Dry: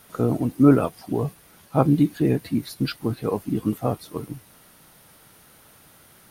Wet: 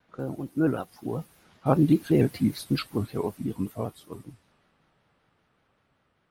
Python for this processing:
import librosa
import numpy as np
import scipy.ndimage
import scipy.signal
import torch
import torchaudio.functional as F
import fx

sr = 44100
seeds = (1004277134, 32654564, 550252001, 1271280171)

y = fx.doppler_pass(x, sr, speed_mps=19, closest_m=12.0, pass_at_s=2.35)
y = fx.env_lowpass(y, sr, base_hz=2600.0, full_db=-35.0)
y = fx.vibrato_shape(y, sr, shape='square', rate_hz=5.2, depth_cents=100.0)